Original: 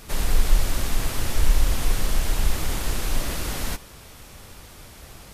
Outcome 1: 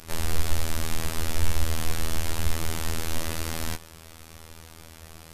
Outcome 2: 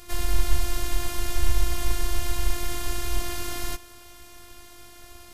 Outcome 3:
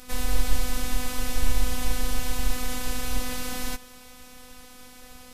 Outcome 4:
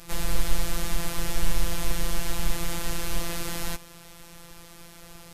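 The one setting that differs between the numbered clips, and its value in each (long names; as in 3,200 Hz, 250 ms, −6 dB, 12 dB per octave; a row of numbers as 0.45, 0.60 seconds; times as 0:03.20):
phases set to zero, frequency: 81, 350, 250, 170 Hertz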